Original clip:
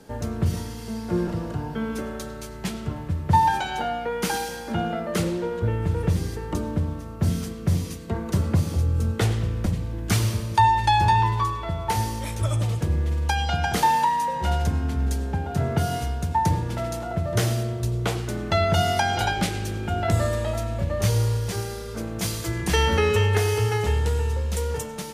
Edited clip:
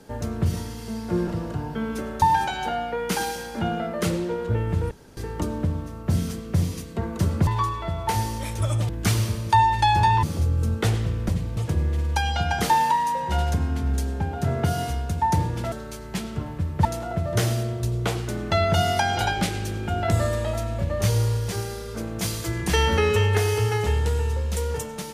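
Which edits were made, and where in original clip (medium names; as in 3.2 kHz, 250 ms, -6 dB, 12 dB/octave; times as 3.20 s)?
2.22–3.35 s: move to 16.85 s
6.04–6.30 s: room tone
8.60–9.94 s: swap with 11.28–12.70 s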